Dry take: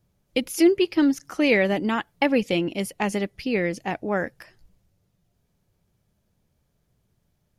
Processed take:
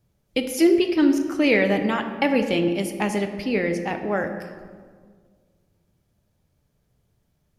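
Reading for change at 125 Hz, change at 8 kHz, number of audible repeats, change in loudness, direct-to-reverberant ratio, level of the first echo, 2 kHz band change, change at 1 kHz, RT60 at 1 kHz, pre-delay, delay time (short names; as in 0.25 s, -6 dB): +1.5 dB, +0.5 dB, none, +1.5 dB, 6.0 dB, none, +1.0 dB, +1.0 dB, 1.6 s, 4 ms, none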